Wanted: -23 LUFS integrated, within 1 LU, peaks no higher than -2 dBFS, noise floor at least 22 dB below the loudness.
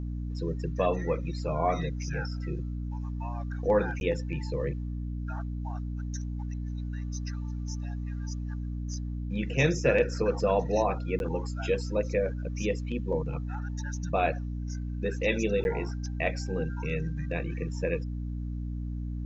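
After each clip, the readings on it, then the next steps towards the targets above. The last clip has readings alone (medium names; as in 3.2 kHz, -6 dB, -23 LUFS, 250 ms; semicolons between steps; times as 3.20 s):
dropouts 3; longest dropout 11 ms; hum 60 Hz; highest harmonic 300 Hz; hum level -31 dBFS; loudness -31.5 LUFS; peak level -12.0 dBFS; loudness target -23.0 LUFS
-> interpolate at 4.00/11.19/15.64 s, 11 ms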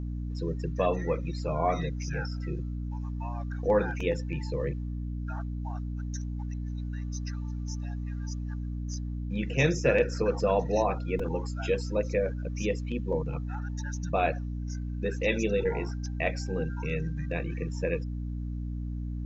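dropouts 0; hum 60 Hz; highest harmonic 300 Hz; hum level -31 dBFS
-> hum notches 60/120/180/240/300 Hz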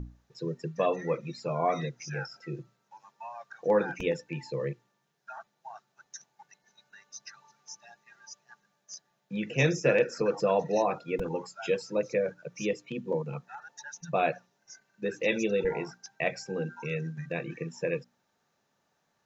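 hum not found; loudness -31.0 LUFS; peak level -12.0 dBFS; loudness target -23.0 LUFS
-> trim +8 dB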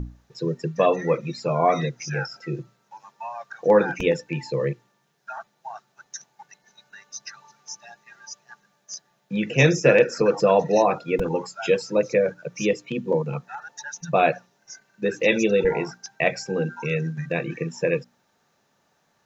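loudness -23.0 LUFS; peak level -4.0 dBFS; noise floor -68 dBFS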